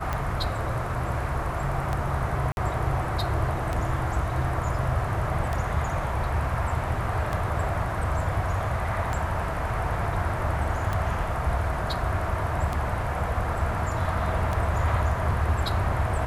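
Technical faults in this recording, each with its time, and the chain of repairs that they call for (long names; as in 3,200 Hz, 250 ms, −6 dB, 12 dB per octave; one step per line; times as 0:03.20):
scratch tick 33 1/3 rpm −15 dBFS
0:02.52–0:02.57: drop-out 51 ms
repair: click removal
repair the gap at 0:02.52, 51 ms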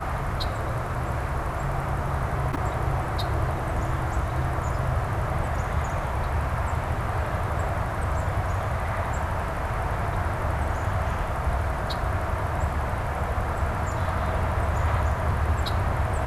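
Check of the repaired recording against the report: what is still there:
none of them is left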